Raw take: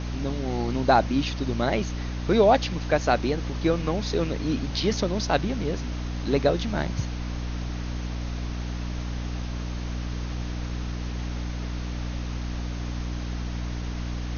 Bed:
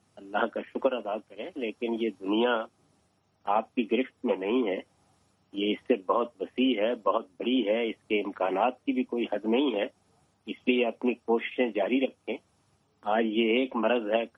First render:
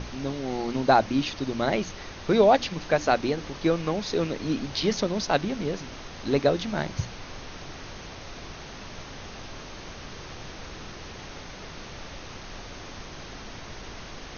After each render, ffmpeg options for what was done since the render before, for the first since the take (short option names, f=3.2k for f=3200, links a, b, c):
-af "bandreject=f=60:t=h:w=6,bandreject=f=120:t=h:w=6,bandreject=f=180:t=h:w=6,bandreject=f=240:t=h:w=6,bandreject=f=300:t=h:w=6"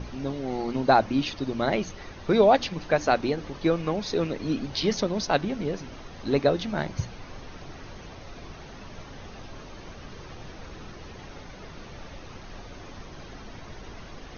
-af "afftdn=nr=8:nf=-42"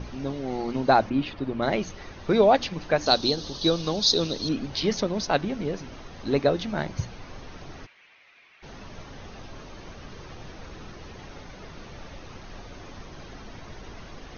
-filter_complex "[0:a]asplit=3[a][b][c];[a]afade=t=out:st=1.09:d=0.02[d];[b]lowpass=2.7k,afade=t=in:st=1.09:d=0.02,afade=t=out:st=1.61:d=0.02[e];[c]afade=t=in:st=1.61:d=0.02[f];[d][e][f]amix=inputs=3:normalize=0,asettb=1/sr,asplit=3[g][h][i];[g]atrim=end=3.064[j];[h]atrim=start=3.06:end=4.49,asetpts=PTS-STARTPTS,afade=t=in:d=0.004:c=qsin,afade=t=out:st=1.426:d=0.004:c=qsin,highshelf=f=3k:t=q:w=3:g=10[k];[i]atrim=start=4.486[l];[j][k]acrossfade=d=0.004:c1=hsin:c2=qsin[m];[m][l]acrossfade=d=0.004:c1=qsin:c2=hsin,asplit=3[n][o][p];[n]afade=t=out:st=7.85:d=0.02[q];[o]bandpass=f=2.3k:t=q:w=3.1,afade=t=in:st=7.85:d=0.02,afade=t=out:st=8.62:d=0.02[r];[p]afade=t=in:st=8.62:d=0.02[s];[q][r][s]amix=inputs=3:normalize=0"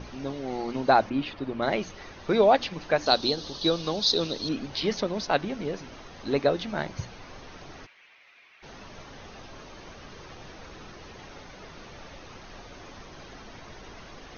-filter_complex "[0:a]acrossover=split=5600[a][b];[b]acompressor=threshold=-53dB:ratio=4:attack=1:release=60[c];[a][c]amix=inputs=2:normalize=0,lowshelf=f=250:g=-6.5"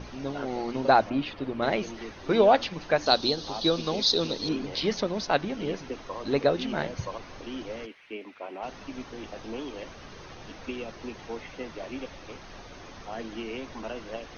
-filter_complex "[1:a]volume=-11.5dB[a];[0:a][a]amix=inputs=2:normalize=0"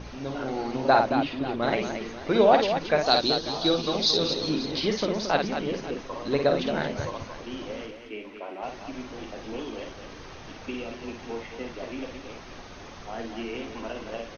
-af "aecho=1:1:52|224|540:0.531|0.398|0.158"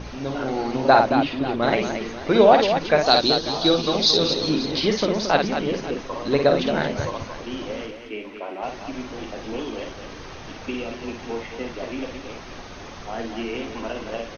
-af "volume=5dB,alimiter=limit=-2dB:level=0:latency=1"